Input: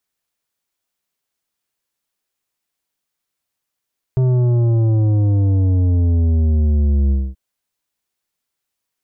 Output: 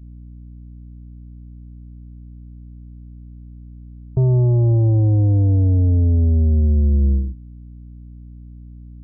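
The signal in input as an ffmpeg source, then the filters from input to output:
-f lavfi -i "aevalsrc='0.224*clip((3.18-t)/0.24,0,1)*tanh(2.99*sin(2*PI*130*3.18/log(65/130)*(exp(log(65/130)*t/3.18)-1)))/tanh(2.99)':duration=3.18:sample_rate=44100"
-af "aeval=exprs='val(0)+0.0158*(sin(2*PI*60*n/s)+sin(2*PI*2*60*n/s)/2+sin(2*PI*3*60*n/s)/3+sin(2*PI*4*60*n/s)/4+sin(2*PI*5*60*n/s)/5)':channel_layout=same,afftdn=noise_reduction=23:noise_floor=-35"

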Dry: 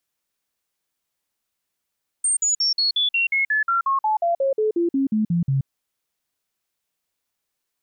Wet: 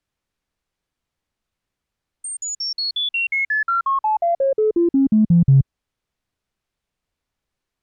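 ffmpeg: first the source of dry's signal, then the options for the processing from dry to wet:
-f lavfi -i "aevalsrc='0.141*clip(min(mod(t,0.18),0.13-mod(t,0.18))/0.005,0,1)*sin(2*PI*8690*pow(2,-floor(t/0.18)/3)*mod(t,0.18))':duration=3.42:sample_rate=44100"
-filter_complex "[0:a]aemphasis=mode=reproduction:type=bsi,asplit=2[link_01][link_02];[link_02]asoftclip=type=tanh:threshold=-16.5dB,volume=-11.5dB[link_03];[link_01][link_03]amix=inputs=2:normalize=0"

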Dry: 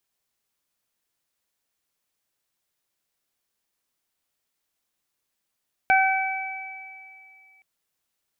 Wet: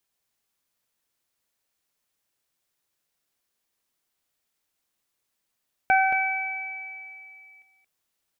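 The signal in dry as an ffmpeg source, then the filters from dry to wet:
-f lavfi -i "aevalsrc='0.15*pow(10,-3*t/1.99)*sin(2*PI*766*t)+0.106*pow(10,-3*t/1.41)*sin(2*PI*1532*t)+0.106*pow(10,-3*t/2.88)*sin(2*PI*2298*t)':duration=1.72:sample_rate=44100"
-filter_complex "[0:a]acrossover=split=2700[link_01][link_02];[link_02]acompressor=threshold=-47dB:ratio=4:attack=1:release=60[link_03];[link_01][link_03]amix=inputs=2:normalize=0,asplit=2[link_04][link_05];[link_05]aecho=0:1:225:0.398[link_06];[link_04][link_06]amix=inputs=2:normalize=0"

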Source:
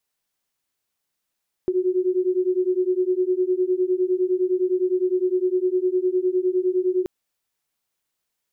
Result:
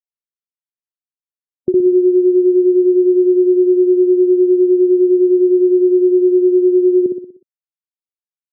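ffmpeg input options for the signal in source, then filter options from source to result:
-f lavfi -i "aevalsrc='0.0841*(sin(2*PI*362*t)+sin(2*PI*371.8*t))':duration=5.38:sample_rate=44100"
-filter_complex "[0:a]afftdn=noise_reduction=35:noise_floor=-30,equalizer=frequency=180:width_type=o:width=2.4:gain=13,asplit=2[link_01][link_02];[link_02]aecho=0:1:61|122|183|244|305|366:0.596|0.298|0.149|0.0745|0.0372|0.0186[link_03];[link_01][link_03]amix=inputs=2:normalize=0"

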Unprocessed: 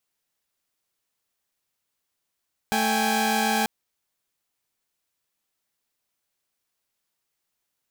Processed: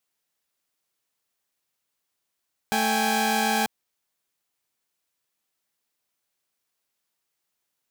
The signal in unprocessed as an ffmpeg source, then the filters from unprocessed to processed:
-f lavfi -i "aevalsrc='0.0708*((2*mod(220*t,1)-1)+(2*mod(783.99*t,1)-1)+(2*mod(830.61*t,1)-1))':duration=0.94:sample_rate=44100"
-af "lowshelf=frequency=89:gain=-7"

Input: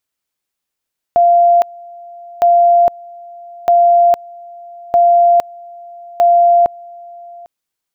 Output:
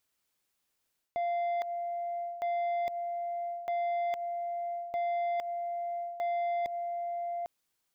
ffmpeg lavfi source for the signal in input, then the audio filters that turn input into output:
-f lavfi -i "aevalsrc='pow(10,(-6-25*gte(mod(t,1.26),0.46))/20)*sin(2*PI*693*t)':duration=6.3:sample_rate=44100"
-af "alimiter=limit=-13dB:level=0:latency=1:release=93,areverse,acompressor=threshold=-26dB:ratio=10,areverse,asoftclip=type=tanh:threshold=-28.5dB"

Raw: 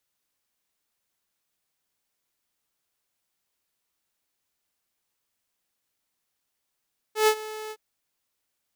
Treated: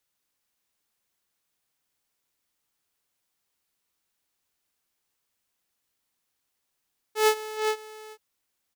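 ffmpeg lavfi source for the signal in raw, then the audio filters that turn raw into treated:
-f lavfi -i "aevalsrc='0.224*(2*mod(432*t,1)-1)':duration=0.614:sample_rate=44100,afade=type=in:duration=0.124,afade=type=out:start_time=0.124:duration=0.072:silence=0.119,afade=type=out:start_time=0.56:duration=0.054"
-af "bandreject=frequency=620:width=18,aecho=1:1:412:0.422"

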